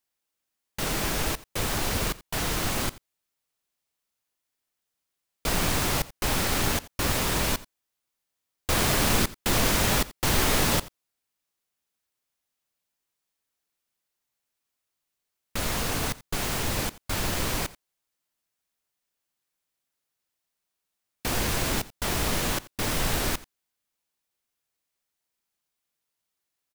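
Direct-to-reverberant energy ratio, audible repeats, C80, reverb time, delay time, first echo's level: no reverb audible, 1, no reverb audible, no reverb audible, 86 ms, −19.5 dB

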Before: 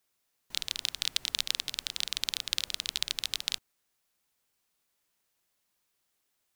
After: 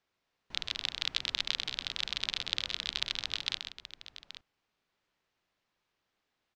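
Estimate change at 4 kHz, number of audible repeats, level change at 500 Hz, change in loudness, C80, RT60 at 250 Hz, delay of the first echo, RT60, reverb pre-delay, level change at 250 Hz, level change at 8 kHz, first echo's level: −1.5 dB, 2, +3.0 dB, −2.0 dB, no reverb audible, no reverb audible, 128 ms, no reverb audible, no reverb audible, +3.5 dB, −10.5 dB, −8.0 dB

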